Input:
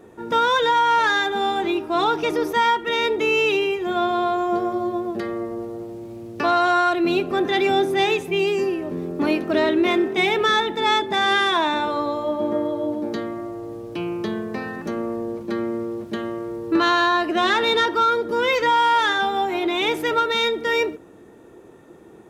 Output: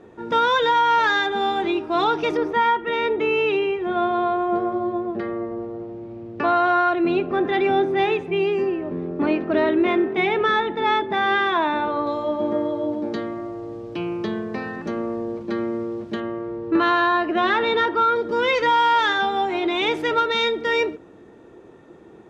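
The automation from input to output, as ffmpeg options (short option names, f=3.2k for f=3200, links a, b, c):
-af "asetnsamples=n=441:p=0,asendcmd='2.37 lowpass f 2400;12.07 lowpass f 5300;16.2 lowpass f 2700;18.16 lowpass f 5300',lowpass=5k"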